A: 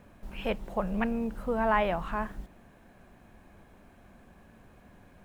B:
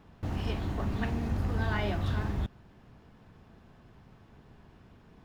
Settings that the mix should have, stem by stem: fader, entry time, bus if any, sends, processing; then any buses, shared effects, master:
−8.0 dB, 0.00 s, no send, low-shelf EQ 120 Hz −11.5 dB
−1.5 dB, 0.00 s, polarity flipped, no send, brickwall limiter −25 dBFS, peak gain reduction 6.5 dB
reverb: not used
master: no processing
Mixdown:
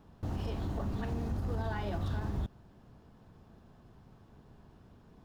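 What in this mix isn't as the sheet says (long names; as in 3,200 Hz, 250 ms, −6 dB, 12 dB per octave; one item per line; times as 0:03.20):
stem A −8.0 dB → −17.5 dB
master: extra parametric band 2,200 Hz −7.5 dB 1.1 octaves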